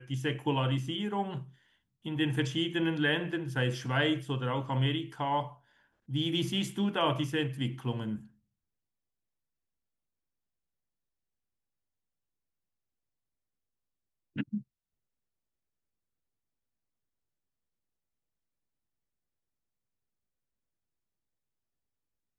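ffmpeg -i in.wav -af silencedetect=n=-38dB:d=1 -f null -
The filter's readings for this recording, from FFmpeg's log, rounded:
silence_start: 8.18
silence_end: 14.36 | silence_duration: 6.18
silence_start: 14.59
silence_end: 22.38 | silence_duration: 7.80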